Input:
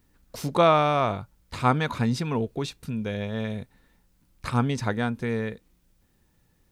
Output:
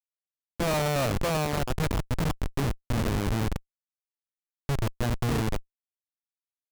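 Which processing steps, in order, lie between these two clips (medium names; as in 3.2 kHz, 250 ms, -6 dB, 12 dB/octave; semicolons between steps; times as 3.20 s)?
feedback delay 649 ms, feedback 33%, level -8 dB; slow attack 219 ms; Schmitt trigger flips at -25.5 dBFS; trim +5.5 dB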